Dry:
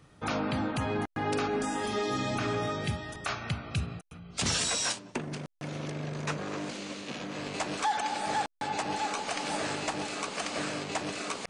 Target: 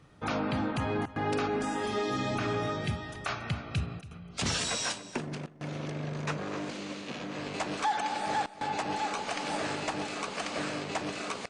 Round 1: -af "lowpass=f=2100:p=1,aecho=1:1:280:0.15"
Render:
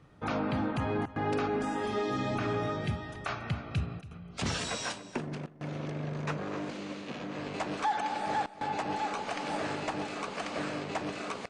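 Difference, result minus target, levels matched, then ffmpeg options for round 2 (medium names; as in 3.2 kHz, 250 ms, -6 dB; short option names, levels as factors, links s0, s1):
4 kHz band -3.5 dB
-af "lowpass=f=5200:p=1,aecho=1:1:280:0.15"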